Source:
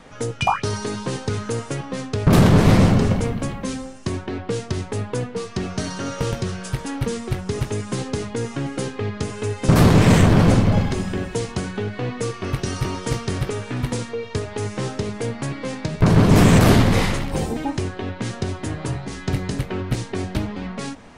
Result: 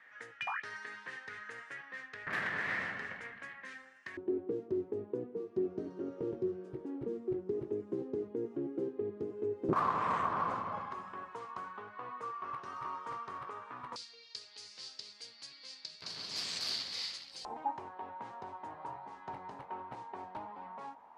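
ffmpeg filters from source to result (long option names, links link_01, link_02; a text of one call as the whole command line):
ffmpeg -i in.wav -af "asetnsamples=nb_out_samples=441:pad=0,asendcmd='4.17 bandpass f 360;9.73 bandpass f 1100;13.96 bandpass f 4600;17.45 bandpass f 910',bandpass=frequency=1800:width_type=q:width=7.2:csg=0" out.wav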